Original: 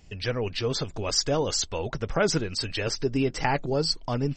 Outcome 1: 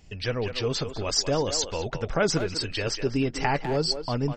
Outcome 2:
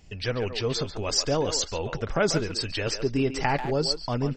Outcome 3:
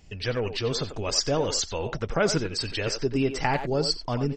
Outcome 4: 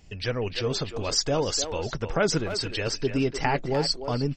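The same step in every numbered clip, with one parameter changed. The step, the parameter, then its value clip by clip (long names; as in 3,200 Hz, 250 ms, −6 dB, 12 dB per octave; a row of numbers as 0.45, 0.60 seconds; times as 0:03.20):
far-end echo of a speakerphone, delay time: 200, 140, 90, 300 milliseconds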